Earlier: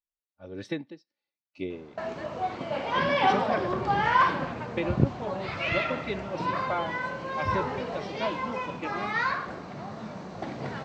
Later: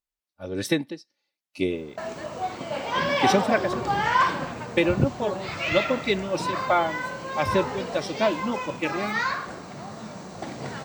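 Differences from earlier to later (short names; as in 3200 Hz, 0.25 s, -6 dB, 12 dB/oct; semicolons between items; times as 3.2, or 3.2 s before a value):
speech +8.5 dB; master: remove air absorption 160 m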